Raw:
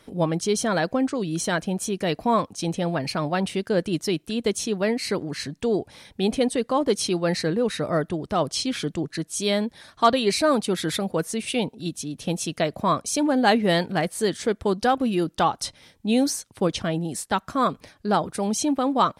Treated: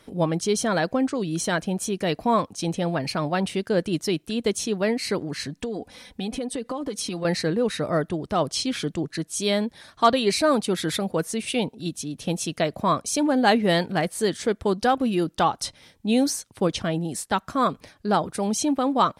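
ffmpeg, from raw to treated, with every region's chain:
-filter_complex "[0:a]asettb=1/sr,asplit=3[s0][s1][s2];[s0]atrim=end=5.564[s3];[s1]atrim=start=5.56:end=7.25,asetpts=PTS-STARTPTS,afade=t=in:d=0.004:c=qsin,afade=t=out:st=1.686:d=0.004:c=qsin,aecho=1:1:4:0.62,atrim=end_sample=74529,acompressor=threshold=0.0562:ratio=12:attack=3.2:release=140:knee=1:detection=peak[s4];[s2]atrim=start=7.246[s5];[s3][s4]acrossfade=d=0.004:c1=hsin:c2=qsin[s6];[s6][s5]acrossfade=d=0.004:c1=qsin:c2=hsin"

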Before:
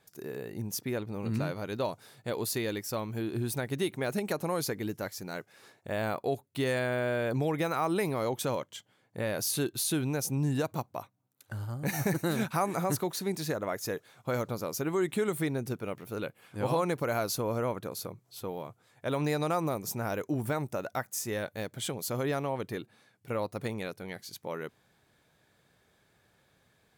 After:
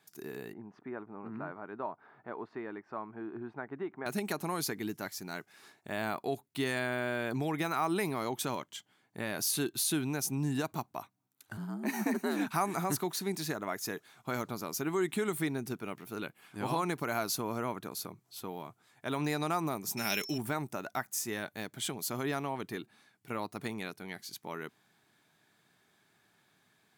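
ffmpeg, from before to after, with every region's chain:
-filter_complex "[0:a]asettb=1/sr,asplit=3[s0][s1][s2];[s0]atrim=end=0.534[s3];[s1]atrim=start=0.53:end=4.06,asetpts=PTS-STARTPTS,afade=t=in:d=0.004:c=qsin,afade=t=out:st=3.526:d=0.004:c=qsin,lowpass=f=1400:w=0.5412,lowpass=f=1400:w=1.3066,aemphasis=mode=production:type=riaa,acompressor=mode=upward:threshold=0.00355:ratio=2.5:attack=3.2:release=140:knee=2.83:detection=peak[s4];[s2]atrim=start=4.056[s5];[s3][s4]acrossfade=d=0.004:c1=hsin:c2=qsin[s6];[s6][s5]acrossfade=d=0.004:c1=qsin:c2=hsin,asettb=1/sr,asplit=3[s7][s8][s9];[s7]atrim=end=11.574[s10];[s8]atrim=start=11.57:end=12.47,asetpts=PTS-STARTPTS,afade=t=in:d=0.004:c=qsin,afade=t=out:st=0.896:d=0.004:c=qsin,highshelf=f=2800:g=-7,afreqshift=74[s11];[s9]atrim=start=12.466[s12];[s10][s11]acrossfade=d=0.004:c1=hsin:c2=qsin[s13];[s13][s12]acrossfade=d=0.004:c1=qsin:c2=hsin,asettb=1/sr,asplit=3[s14][s15][s16];[s14]atrim=end=19.974[s17];[s15]atrim=start=19.97:end=20.38,asetpts=PTS-STARTPTS,afade=t=in:d=0.004:c=qsin,afade=t=out:st=0.406:d=0.004:c=qsin,highshelf=f=1800:t=q:w=1.5:g=12,aecho=1:1:5:0.33,atrim=end_sample=18081,aeval=exprs='val(0)+0.00794*sin(2*PI*5400*n/s)':c=same[s18];[s16]atrim=start=20.376[s19];[s17][s18]acrossfade=d=0.004:c1=hsin:c2=qsin[s20];[s20][s19]acrossfade=d=0.004:c1=qsin:c2=hsin,highpass=170,equalizer=f=520:w=3.9:g=-13"

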